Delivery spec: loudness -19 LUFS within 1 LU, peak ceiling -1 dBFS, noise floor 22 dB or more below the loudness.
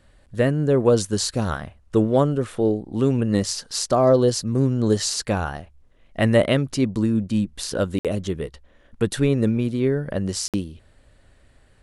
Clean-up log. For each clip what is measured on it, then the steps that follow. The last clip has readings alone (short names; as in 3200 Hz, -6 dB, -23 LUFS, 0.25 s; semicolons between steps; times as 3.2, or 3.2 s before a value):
dropouts 2; longest dropout 57 ms; loudness -22.0 LUFS; peak -4.5 dBFS; loudness target -19.0 LUFS
-> interpolate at 7.99/10.48, 57 ms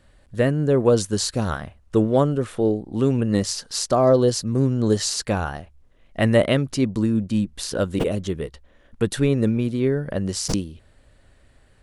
dropouts 0; loudness -22.0 LUFS; peak -4.5 dBFS; loudness target -19.0 LUFS
-> gain +3 dB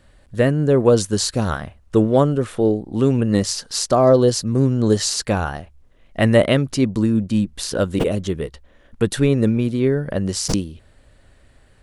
loudness -19.0 LUFS; peak -1.5 dBFS; noise floor -53 dBFS